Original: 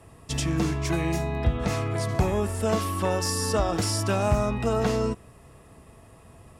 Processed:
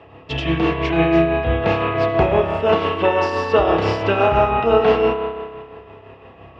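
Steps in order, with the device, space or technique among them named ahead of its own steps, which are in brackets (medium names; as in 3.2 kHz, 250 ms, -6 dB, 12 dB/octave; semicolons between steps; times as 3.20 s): combo amplifier with spring reverb and tremolo (spring tank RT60 1.7 s, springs 30 ms, chirp 75 ms, DRR 0 dB; tremolo 5.9 Hz, depth 43%; cabinet simulation 75–3500 Hz, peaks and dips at 82 Hz -6 dB, 120 Hz -8 dB, 200 Hz -8 dB, 440 Hz +5 dB, 790 Hz +4 dB, 2.8 kHz +7 dB); trim +8 dB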